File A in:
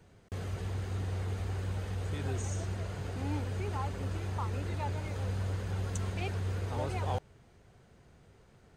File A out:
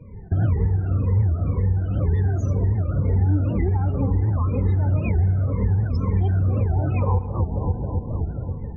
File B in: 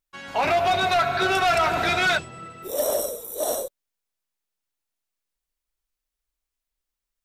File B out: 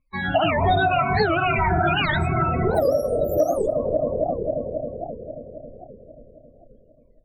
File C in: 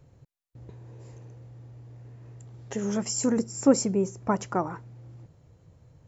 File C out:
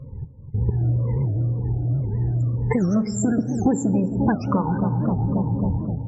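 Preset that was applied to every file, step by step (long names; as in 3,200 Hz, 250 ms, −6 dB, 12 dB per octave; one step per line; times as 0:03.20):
rippled gain that drifts along the octave scale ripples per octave 0.92, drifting −2 Hz, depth 18 dB
bass and treble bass +11 dB, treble −5 dB
feedback echo with a low-pass in the loop 268 ms, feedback 73%, low-pass 1,300 Hz, level −12 dB
automatic gain control gain up to 8.5 dB
spectral peaks only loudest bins 32
downward compressor 12 to 1, threshold −25 dBFS
high-shelf EQ 5,100 Hz −9.5 dB
feedback delay network reverb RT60 1.8 s, low-frequency decay 1.1×, high-frequency decay 0.25×, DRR 13.5 dB
wow of a warped record 78 rpm, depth 250 cents
level +8 dB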